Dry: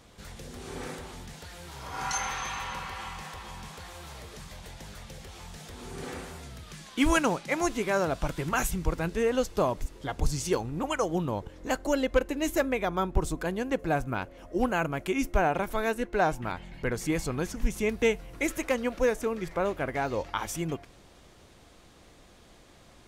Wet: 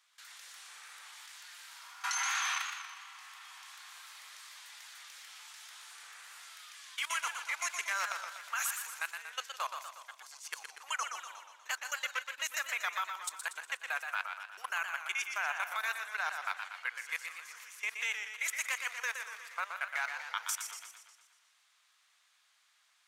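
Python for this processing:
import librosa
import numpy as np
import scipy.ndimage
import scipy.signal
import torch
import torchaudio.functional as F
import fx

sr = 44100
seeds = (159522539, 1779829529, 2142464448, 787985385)

p1 = scipy.signal.sosfilt(scipy.signal.butter(4, 1200.0, 'highpass', fs=sr, output='sos'), x)
p2 = fx.level_steps(p1, sr, step_db=19)
p3 = fx.auto_swell(p2, sr, attack_ms=280.0, at=(9.79, 10.52))
p4 = p3 + fx.echo_single(p3, sr, ms=161, db=-15.5, dry=0)
p5 = fx.echo_warbled(p4, sr, ms=120, feedback_pct=56, rate_hz=2.8, cents=109, wet_db=-6.5)
y = F.gain(torch.from_numpy(p5), 4.0).numpy()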